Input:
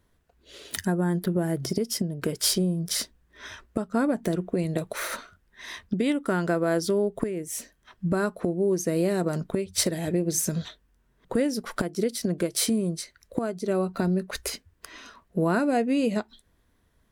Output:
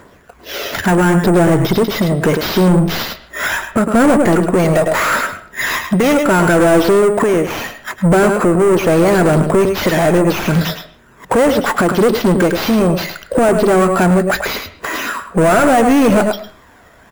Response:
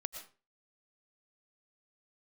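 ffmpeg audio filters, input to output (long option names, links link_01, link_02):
-filter_complex "[0:a]aphaser=in_gain=1:out_gain=1:delay=1.6:decay=0.43:speed=0.74:type=triangular,asplit=2[link_01][link_02];[link_02]adelay=105,volume=-13dB,highshelf=frequency=4000:gain=-2.36[link_03];[link_01][link_03]amix=inputs=2:normalize=0,asplit=2[link_04][link_05];[link_05]highpass=frequency=720:poles=1,volume=34dB,asoftclip=type=tanh:threshold=-7dB[link_06];[link_04][link_06]amix=inputs=2:normalize=0,lowpass=frequency=2000:poles=1,volume=-6dB,acrusher=samples=5:mix=1:aa=0.000001,asplit=2[link_07][link_08];[1:a]atrim=start_sample=2205,lowpass=3000[link_09];[link_08][link_09]afir=irnorm=-1:irlink=0,volume=-3dB[link_10];[link_07][link_10]amix=inputs=2:normalize=0"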